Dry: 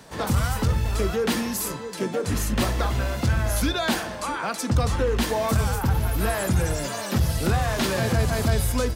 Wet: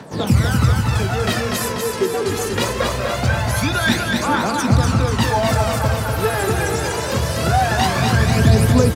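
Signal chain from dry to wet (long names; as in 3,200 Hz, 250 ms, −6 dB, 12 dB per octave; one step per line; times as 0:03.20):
high-pass filter 91 Hz 24 dB per octave
high-shelf EQ 10,000 Hz −9.5 dB
phase shifter 0.23 Hz, delay 2.6 ms, feedback 67%
repeating echo 244 ms, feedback 57%, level −4 dB
level +3.5 dB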